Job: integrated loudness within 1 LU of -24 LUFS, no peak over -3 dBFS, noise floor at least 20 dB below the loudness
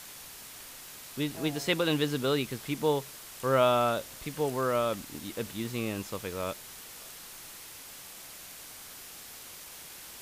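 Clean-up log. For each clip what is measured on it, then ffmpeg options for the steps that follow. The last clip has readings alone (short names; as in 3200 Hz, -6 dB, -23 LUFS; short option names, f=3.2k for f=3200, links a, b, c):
noise floor -47 dBFS; noise floor target -51 dBFS; loudness -30.5 LUFS; peak -11.5 dBFS; loudness target -24.0 LUFS
-> -af "afftdn=nr=6:nf=-47"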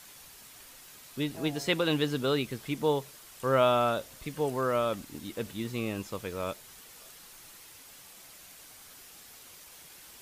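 noise floor -52 dBFS; loudness -30.5 LUFS; peak -11.5 dBFS; loudness target -24.0 LUFS
-> -af "volume=6.5dB"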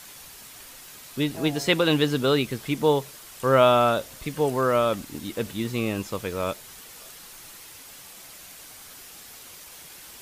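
loudness -24.0 LUFS; peak -5.0 dBFS; noise floor -45 dBFS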